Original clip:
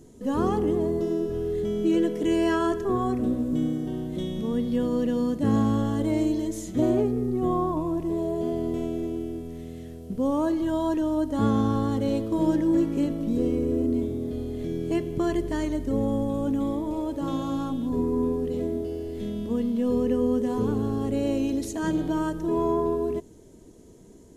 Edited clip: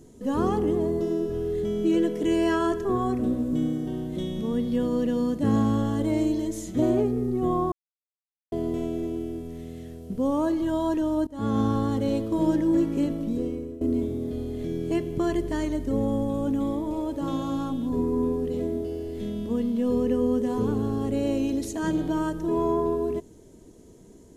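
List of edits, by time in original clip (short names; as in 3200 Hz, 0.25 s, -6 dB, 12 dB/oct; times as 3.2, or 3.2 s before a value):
7.72–8.52 mute
11.27–11.61 fade in, from -23 dB
13.15–13.81 fade out, to -17.5 dB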